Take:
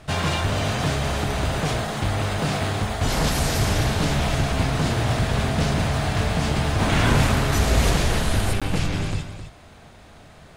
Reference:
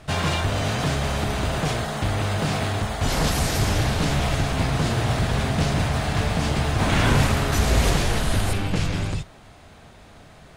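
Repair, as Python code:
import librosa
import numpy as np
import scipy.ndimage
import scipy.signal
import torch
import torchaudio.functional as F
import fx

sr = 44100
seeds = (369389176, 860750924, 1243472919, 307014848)

y = fx.fix_interpolate(x, sr, at_s=(8.6,), length_ms=16.0)
y = fx.fix_echo_inverse(y, sr, delay_ms=263, level_db=-10.0)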